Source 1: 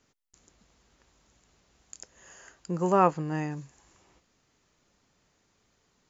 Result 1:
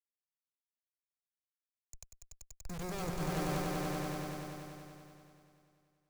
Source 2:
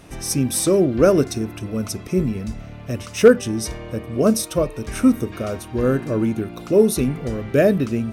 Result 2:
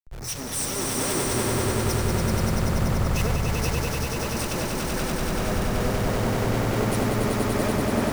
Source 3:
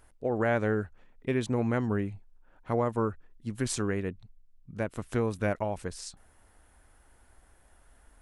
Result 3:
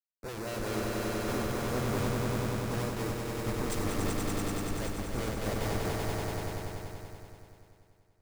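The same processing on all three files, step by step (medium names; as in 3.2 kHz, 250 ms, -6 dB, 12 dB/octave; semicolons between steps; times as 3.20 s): compression 6:1, threshold -25 dBFS; loudest bins only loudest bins 32; Schmitt trigger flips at -36.5 dBFS; LFO notch square 5.3 Hz 260–3100 Hz; on a send: echo with a slow build-up 96 ms, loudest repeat 5, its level -3.5 dB; on the sum: three bands expanded up and down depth 70%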